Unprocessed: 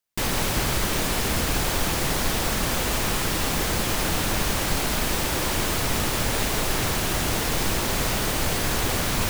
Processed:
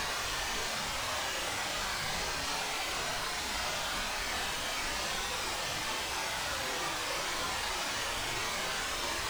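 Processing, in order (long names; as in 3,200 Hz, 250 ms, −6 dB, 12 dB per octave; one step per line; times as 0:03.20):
extreme stretch with random phases 7.1×, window 0.05 s, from 0:04.42
three-way crossover with the lows and the highs turned down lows −13 dB, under 580 Hz, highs −15 dB, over 8,000 Hz
level −6 dB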